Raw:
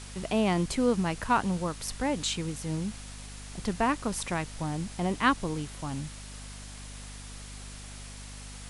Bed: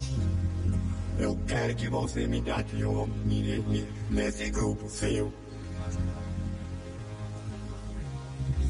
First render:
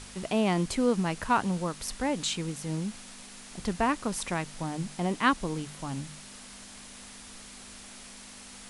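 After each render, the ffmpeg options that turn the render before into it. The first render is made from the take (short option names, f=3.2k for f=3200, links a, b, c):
-af "bandreject=f=50:t=h:w=4,bandreject=f=100:t=h:w=4,bandreject=f=150:t=h:w=4"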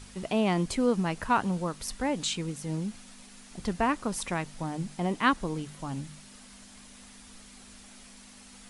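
-af "afftdn=nr=6:nf=-47"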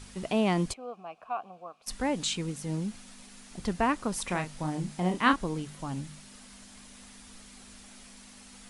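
-filter_complex "[0:a]asplit=3[a][b][c];[a]afade=t=out:st=0.72:d=0.02[d];[b]asplit=3[e][f][g];[e]bandpass=f=730:t=q:w=8,volume=0dB[h];[f]bandpass=f=1.09k:t=q:w=8,volume=-6dB[i];[g]bandpass=f=2.44k:t=q:w=8,volume=-9dB[j];[h][i][j]amix=inputs=3:normalize=0,afade=t=in:st=0.72:d=0.02,afade=t=out:st=1.86:d=0.02[k];[c]afade=t=in:st=1.86:d=0.02[l];[d][k][l]amix=inputs=3:normalize=0,asettb=1/sr,asplit=3[m][n][o];[m]atrim=end=4.244[p];[n]atrim=start=4.24:end=5.36,asetpts=PTS-STARTPTS,afade=t=in:d=0.004:c=qsin,afade=t=out:st=1.116:d=0.004:c=qsin,asplit=2[q][r];[r]adelay=33,volume=-7dB[s];[q][s]amix=inputs=2:normalize=0,atrim=end_sample=49392[t];[o]atrim=start=5.356[u];[p][t]acrossfade=d=0.004:c1=hsin:c2=qsin[v];[v][u]acrossfade=d=0.004:c1=qsin:c2=hsin"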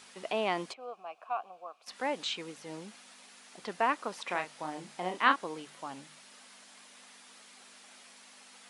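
-filter_complex "[0:a]acrossover=split=4700[a][b];[b]acompressor=threshold=-57dB:ratio=4:attack=1:release=60[c];[a][c]amix=inputs=2:normalize=0,highpass=490"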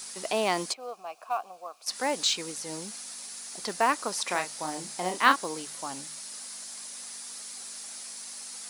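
-filter_complex "[0:a]aexciter=amount=3.8:drive=6.4:freq=4.3k,asplit=2[a][b];[b]acrusher=bits=4:mode=log:mix=0:aa=0.000001,volume=-4.5dB[c];[a][c]amix=inputs=2:normalize=0"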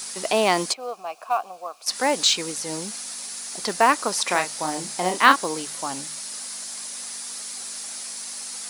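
-af "volume=7dB,alimiter=limit=-1dB:level=0:latency=1"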